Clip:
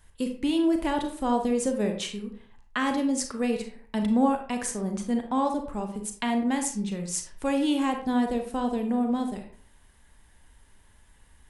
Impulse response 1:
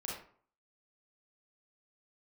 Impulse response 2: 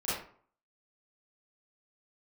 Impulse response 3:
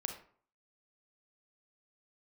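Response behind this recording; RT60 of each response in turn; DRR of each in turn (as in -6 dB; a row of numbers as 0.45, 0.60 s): 3; 0.50, 0.50, 0.50 s; -4.5, -12.0, 4.5 dB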